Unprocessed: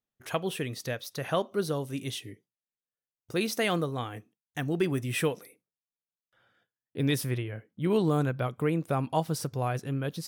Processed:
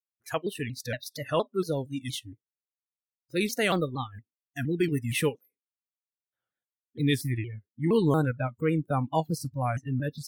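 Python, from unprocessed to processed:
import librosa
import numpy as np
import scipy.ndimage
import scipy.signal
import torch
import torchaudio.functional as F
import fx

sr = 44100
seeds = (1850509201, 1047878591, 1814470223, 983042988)

y = fx.transient(x, sr, attack_db=-3, sustain_db=-7)
y = fx.noise_reduce_blind(y, sr, reduce_db=26)
y = fx.vibrato_shape(y, sr, shape='saw_down', rate_hz=4.3, depth_cents=160.0)
y = y * 10.0 ** (3.0 / 20.0)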